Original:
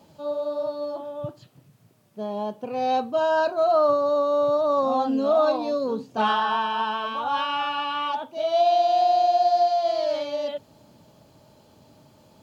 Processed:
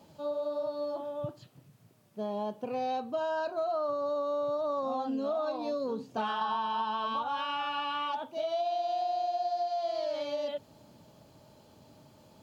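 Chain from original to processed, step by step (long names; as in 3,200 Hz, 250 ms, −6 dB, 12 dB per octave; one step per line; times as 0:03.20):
0:06.41–0:07.23: octave-band graphic EQ 125/250/1,000/2,000/4,000 Hz +9/+4/+8/−7/+8 dB
downward compressor 5 to 1, threshold −27 dBFS, peak gain reduction 11 dB
level −3 dB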